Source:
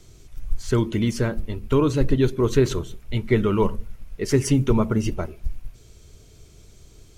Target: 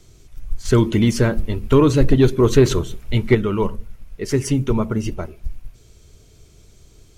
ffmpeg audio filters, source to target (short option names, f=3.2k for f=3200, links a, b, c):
-filter_complex "[0:a]asettb=1/sr,asplit=3[a][b][c];[a]atrim=end=0.654[d];[b]atrim=start=0.65:end=3.35,asetpts=PTS-STARTPTS,afade=t=in:d=0.004:c=qsin,afade=t=out:st=2.696:d=0.004:c=qsin,acontrast=68[e];[c]atrim=start=3.346[f];[d][e]acrossfade=d=0.004:c1=hsin:c2=qsin[g];[g][f]acrossfade=d=0.004:c1=qsin:c2=hsin"